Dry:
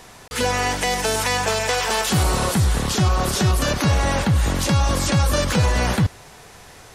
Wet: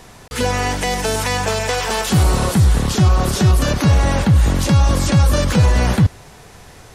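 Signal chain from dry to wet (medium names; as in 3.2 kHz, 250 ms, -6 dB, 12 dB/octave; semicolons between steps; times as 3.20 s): bass shelf 360 Hz +6.5 dB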